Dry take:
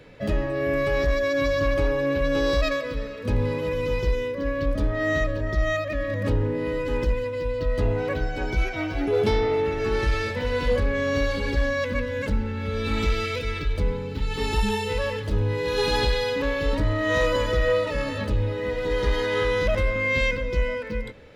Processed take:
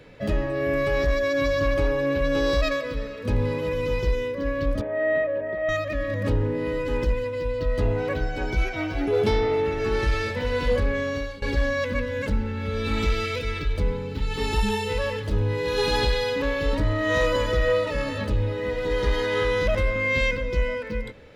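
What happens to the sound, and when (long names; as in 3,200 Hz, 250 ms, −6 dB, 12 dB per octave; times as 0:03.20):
0:04.81–0:05.69: loudspeaker in its box 270–2,400 Hz, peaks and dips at 320 Hz −6 dB, 580 Hz +7 dB, 1,300 Hz −9 dB
0:10.91–0:11.42: fade out, to −17.5 dB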